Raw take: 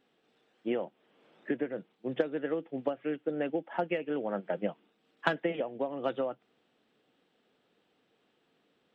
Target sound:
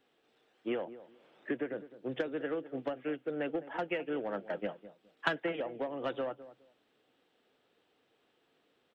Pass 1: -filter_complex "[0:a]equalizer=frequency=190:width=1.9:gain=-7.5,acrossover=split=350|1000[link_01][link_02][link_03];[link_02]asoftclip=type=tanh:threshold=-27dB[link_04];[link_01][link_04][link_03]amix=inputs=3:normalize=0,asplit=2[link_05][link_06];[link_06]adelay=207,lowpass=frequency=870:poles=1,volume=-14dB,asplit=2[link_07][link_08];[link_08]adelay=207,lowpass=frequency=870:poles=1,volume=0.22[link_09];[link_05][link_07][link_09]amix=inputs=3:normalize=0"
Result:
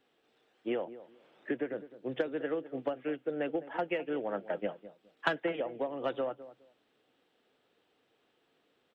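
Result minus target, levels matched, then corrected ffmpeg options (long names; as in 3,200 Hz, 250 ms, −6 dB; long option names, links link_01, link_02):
soft clipping: distortion −7 dB
-filter_complex "[0:a]equalizer=frequency=190:width=1.9:gain=-7.5,acrossover=split=350|1000[link_01][link_02][link_03];[link_02]asoftclip=type=tanh:threshold=-35dB[link_04];[link_01][link_04][link_03]amix=inputs=3:normalize=0,asplit=2[link_05][link_06];[link_06]adelay=207,lowpass=frequency=870:poles=1,volume=-14dB,asplit=2[link_07][link_08];[link_08]adelay=207,lowpass=frequency=870:poles=1,volume=0.22[link_09];[link_05][link_07][link_09]amix=inputs=3:normalize=0"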